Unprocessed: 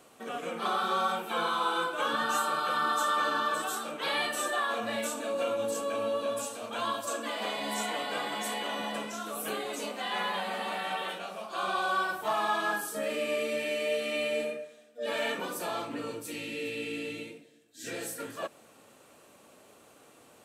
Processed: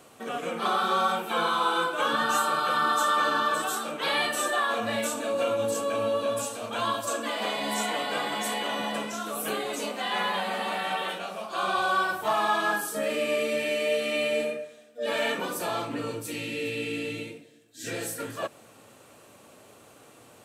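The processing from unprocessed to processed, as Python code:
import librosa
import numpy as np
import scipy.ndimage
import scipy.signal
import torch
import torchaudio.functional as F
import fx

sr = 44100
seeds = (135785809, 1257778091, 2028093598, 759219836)

y = fx.peak_eq(x, sr, hz=110.0, db=7.5, octaves=0.58)
y = F.gain(torch.from_numpy(y), 4.0).numpy()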